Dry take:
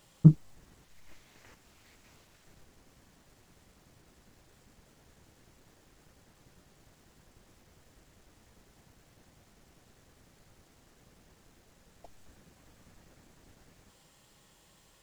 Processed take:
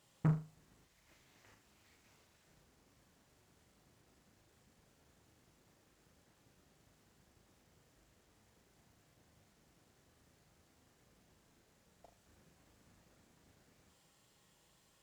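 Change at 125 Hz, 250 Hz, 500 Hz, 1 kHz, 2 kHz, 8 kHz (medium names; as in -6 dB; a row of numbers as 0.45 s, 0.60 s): -13.0 dB, -13.5 dB, -7.0 dB, +1.0 dB, -2.5 dB, no reading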